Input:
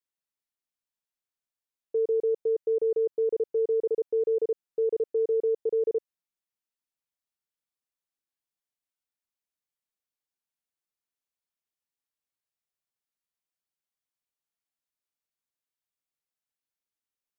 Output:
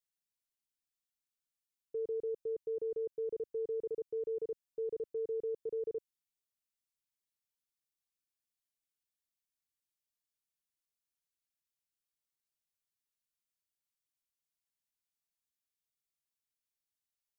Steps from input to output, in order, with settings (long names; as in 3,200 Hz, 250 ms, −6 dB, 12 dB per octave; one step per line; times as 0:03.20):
parametric band 680 Hz −13.5 dB 2.8 octaves